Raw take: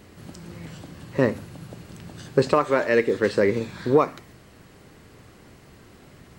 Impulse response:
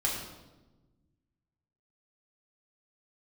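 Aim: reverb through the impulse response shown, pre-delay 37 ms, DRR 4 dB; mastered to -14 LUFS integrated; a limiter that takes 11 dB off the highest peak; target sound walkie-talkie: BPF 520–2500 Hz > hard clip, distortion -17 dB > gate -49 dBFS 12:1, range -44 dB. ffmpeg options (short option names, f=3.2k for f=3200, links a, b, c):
-filter_complex "[0:a]alimiter=limit=-15.5dB:level=0:latency=1,asplit=2[a][b];[1:a]atrim=start_sample=2205,adelay=37[c];[b][c]afir=irnorm=-1:irlink=0,volume=-11dB[d];[a][d]amix=inputs=2:normalize=0,highpass=520,lowpass=2.5k,asoftclip=type=hard:threshold=-22.5dB,agate=range=-44dB:threshold=-49dB:ratio=12,volume=18dB"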